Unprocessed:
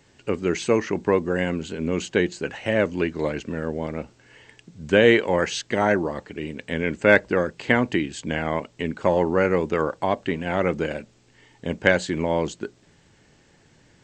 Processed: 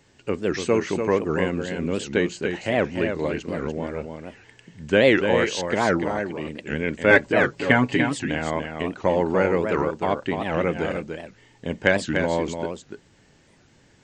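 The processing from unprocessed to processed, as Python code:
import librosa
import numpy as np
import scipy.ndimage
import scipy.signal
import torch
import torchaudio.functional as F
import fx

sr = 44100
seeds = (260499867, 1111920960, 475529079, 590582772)

y = fx.comb(x, sr, ms=7.2, depth=0.88, at=(7.1, 8.22))
y = y + 10.0 ** (-6.5 / 20.0) * np.pad(y, (int(293 * sr / 1000.0), 0))[:len(y)]
y = fx.record_warp(y, sr, rpm=78.0, depth_cents=250.0)
y = y * 10.0 ** (-1.0 / 20.0)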